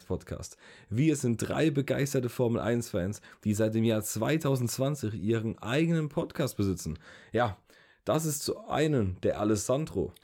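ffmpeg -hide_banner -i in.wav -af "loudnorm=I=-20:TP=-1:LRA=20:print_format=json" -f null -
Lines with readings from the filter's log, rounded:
"input_i" : "-29.9",
"input_tp" : "-14.4",
"input_lra" : "2.5",
"input_thresh" : "-40.2",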